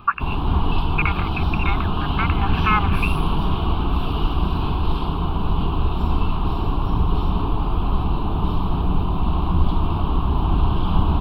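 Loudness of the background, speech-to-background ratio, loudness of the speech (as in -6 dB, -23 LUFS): -23.0 LUFS, -3.0 dB, -26.0 LUFS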